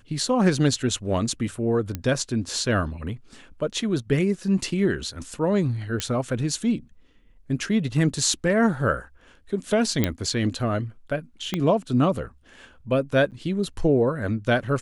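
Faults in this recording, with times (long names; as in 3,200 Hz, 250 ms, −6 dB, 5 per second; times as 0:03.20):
0:01.95: click −14 dBFS
0:06.00: click −10 dBFS
0:10.04: click −7 dBFS
0:11.54: click −11 dBFS
0:13.31–0:13.32: drop-out 8.7 ms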